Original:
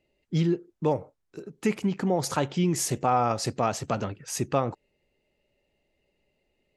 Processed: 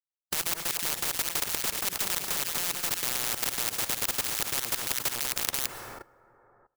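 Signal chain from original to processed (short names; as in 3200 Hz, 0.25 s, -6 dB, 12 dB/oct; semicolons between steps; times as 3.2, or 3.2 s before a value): median filter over 25 samples; wrapped overs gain 19 dB; low shelf 370 Hz -11.5 dB; echo with dull and thin repeats by turns 0.168 s, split 1600 Hz, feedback 65%, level -4 dB; bit-crush 7-bit; compressor 12:1, threshold -37 dBFS, peak gain reduction 15.5 dB; plate-style reverb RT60 1.9 s, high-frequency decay 0.4×, pre-delay 0.1 s, DRR 18 dB; level quantiser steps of 21 dB; comb 2.3 ms, depth 42%; maximiser +35.5 dB; spectral compressor 10:1; gain -1 dB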